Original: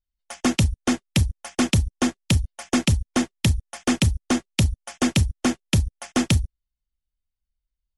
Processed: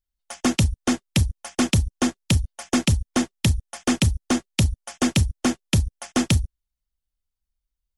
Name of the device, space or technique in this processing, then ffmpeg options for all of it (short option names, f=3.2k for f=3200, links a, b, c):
exciter from parts: -filter_complex "[0:a]asplit=2[a][b];[b]highpass=f=2k:w=0.5412,highpass=f=2k:w=1.3066,asoftclip=type=tanh:threshold=-27.5dB,volume=-12dB[c];[a][c]amix=inputs=2:normalize=0"